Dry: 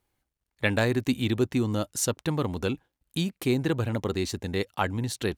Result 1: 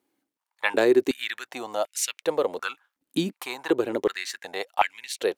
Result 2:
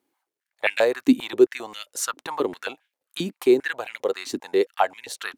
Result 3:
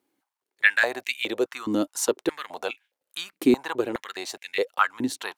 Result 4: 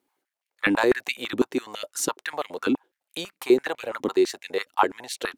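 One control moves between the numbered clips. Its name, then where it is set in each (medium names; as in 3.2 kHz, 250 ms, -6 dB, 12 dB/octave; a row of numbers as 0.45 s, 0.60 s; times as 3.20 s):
step-sequenced high-pass, rate: 2.7 Hz, 7.5 Hz, 4.8 Hz, 12 Hz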